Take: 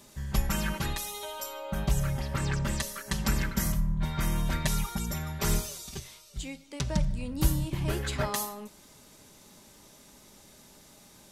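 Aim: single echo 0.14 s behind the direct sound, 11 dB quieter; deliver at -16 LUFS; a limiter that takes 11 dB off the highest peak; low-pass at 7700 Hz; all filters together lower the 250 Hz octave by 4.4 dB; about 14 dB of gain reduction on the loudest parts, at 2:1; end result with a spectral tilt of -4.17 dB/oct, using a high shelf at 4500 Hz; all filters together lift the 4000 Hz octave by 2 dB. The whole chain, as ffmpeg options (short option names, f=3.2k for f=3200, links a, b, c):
-af "lowpass=7.7k,equalizer=f=250:t=o:g=-7.5,equalizer=f=4k:t=o:g=5.5,highshelf=f=4.5k:g=-5,acompressor=threshold=-46dB:ratio=2,alimiter=level_in=10.5dB:limit=-24dB:level=0:latency=1,volume=-10.5dB,aecho=1:1:140:0.282,volume=30dB"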